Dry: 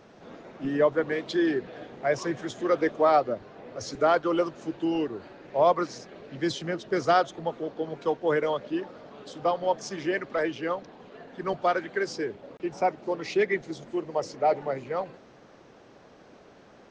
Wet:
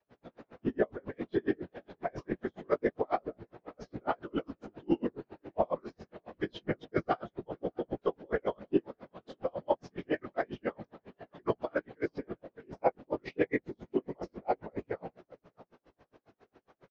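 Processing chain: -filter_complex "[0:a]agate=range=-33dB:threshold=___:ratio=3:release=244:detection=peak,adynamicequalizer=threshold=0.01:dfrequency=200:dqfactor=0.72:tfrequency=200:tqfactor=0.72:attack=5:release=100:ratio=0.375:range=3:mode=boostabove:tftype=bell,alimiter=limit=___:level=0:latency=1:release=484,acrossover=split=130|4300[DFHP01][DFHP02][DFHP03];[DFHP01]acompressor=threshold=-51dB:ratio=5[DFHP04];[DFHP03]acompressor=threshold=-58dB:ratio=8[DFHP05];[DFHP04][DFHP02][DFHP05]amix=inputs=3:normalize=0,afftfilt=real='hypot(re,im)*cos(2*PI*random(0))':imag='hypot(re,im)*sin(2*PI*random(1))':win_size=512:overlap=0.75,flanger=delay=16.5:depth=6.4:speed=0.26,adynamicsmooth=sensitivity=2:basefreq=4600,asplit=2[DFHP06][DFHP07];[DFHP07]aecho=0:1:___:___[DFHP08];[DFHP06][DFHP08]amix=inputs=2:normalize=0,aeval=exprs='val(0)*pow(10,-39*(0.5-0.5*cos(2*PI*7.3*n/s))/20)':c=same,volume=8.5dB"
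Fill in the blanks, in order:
-49dB, -14.5dB, 605, 0.0794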